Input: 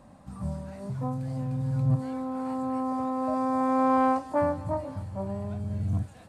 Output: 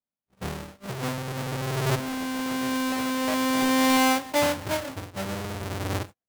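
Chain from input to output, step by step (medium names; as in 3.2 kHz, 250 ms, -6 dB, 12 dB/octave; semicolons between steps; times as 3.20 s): square wave that keeps the level; bass shelf 170 Hz -10 dB; gate -36 dBFS, range -49 dB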